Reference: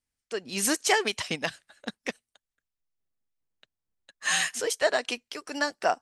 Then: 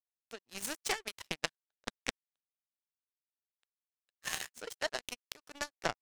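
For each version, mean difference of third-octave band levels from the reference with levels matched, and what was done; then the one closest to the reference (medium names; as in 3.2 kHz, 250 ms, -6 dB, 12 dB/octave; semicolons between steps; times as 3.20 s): 7.5 dB: compression 2:1, threshold -41 dBFS, peak gain reduction 12.5 dB; power-law waveshaper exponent 3; trim +13 dB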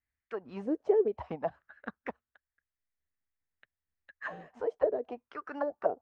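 11.5 dB: peaking EQ 70 Hz +13.5 dB 0.68 oct; touch-sensitive low-pass 440–1900 Hz down, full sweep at -21.5 dBFS; trim -7 dB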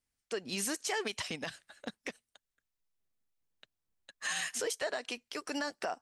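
3.5 dB: compression 2:1, threshold -32 dBFS, peak gain reduction 8 dB; peak limiter -25 dBFS, peak gain reduction 8.5 dB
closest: third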